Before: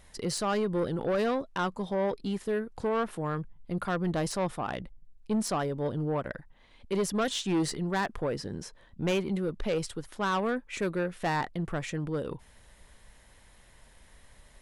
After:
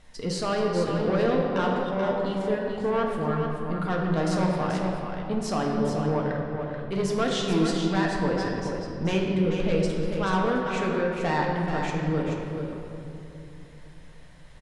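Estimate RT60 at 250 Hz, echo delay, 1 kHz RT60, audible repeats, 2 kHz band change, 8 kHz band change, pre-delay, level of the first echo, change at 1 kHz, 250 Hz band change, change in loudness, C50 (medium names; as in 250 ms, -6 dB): 3.7 s, 433 ms, 2.7 s, 1, +4.5 dB, -1.5 dB, 4 ms, -7.0 dB, +4.5 dB, +5.5 dB, +5.0 dB, 0.0 dB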